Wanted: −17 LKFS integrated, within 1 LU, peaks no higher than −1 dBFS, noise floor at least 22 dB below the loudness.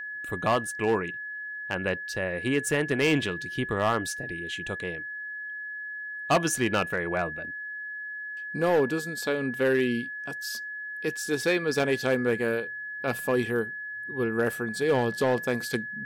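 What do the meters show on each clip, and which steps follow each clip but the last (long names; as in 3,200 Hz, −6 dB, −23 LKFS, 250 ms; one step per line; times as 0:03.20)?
share of clipped samples 0.5%; peaks flattened at −17.0 dBFS; interfering tone 1,700 Hz; level of the tone −34 dBFS; integrated loudness −28.5 LKFS; sample peak −17.0 dBFS; target loudness −17.0 LKFS
→ clipped peaks rebuilt −17 dBFS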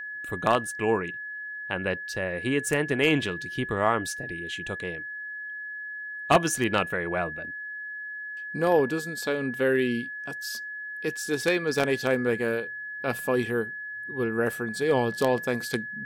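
share of clipped samples 0.0%; interfering tone 1,700 Hz; level of the tone −34 dBFS
→ notch filter 1,700 Hz, Q 30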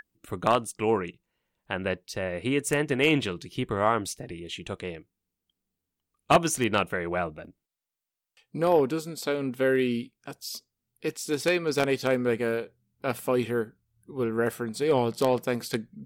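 interfering tone none found; integrated loudness −27.5 LKFS; sample peak −7.5 dBFS; target loudness −17.0 LKFS
→ level +10.5 dB
brickwall limiter −1 dBFS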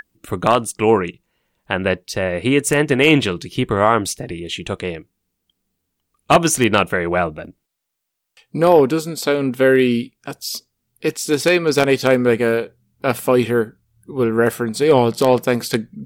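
integrated loudness −17.5 LKFS; sample peak −1.0 dBFS; background noise floor −76 dBFS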